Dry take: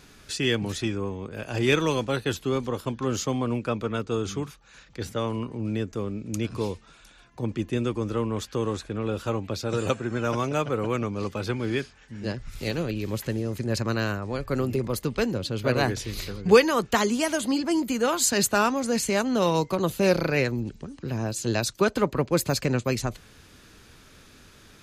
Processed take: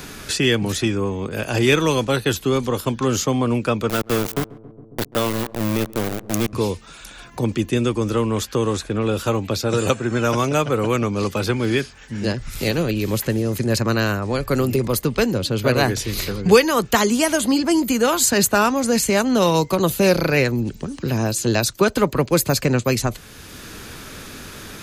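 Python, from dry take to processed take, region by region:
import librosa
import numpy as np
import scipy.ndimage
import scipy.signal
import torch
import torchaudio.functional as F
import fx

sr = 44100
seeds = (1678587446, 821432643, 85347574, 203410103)

y = fx.chain(x, sr, fx.sample_gate(floor_db=-27.5),
    fx.echo_filtered(ms=136, feedback_pct=75, hz=870.0, wet_db=-20.0), at=(3.89, 6.53))
y = fx.high_shelf(y, sr, hz=11000.0, db=11.5)
y = fx.band_squash(y, sr, depth_pct=40)
y = y * librosa.db_to_amplitude(6.5)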